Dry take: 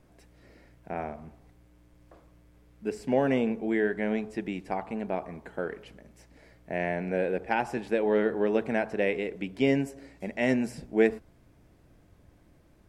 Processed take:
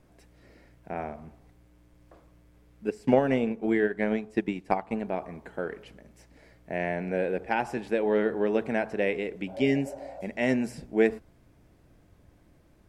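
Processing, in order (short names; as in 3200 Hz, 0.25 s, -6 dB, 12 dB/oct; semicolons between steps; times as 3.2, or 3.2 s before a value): 2.87–5.04 transient shaper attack +8 dB, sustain -6 dB; 9.5–10.19 spectral repair 510–1600 Hz after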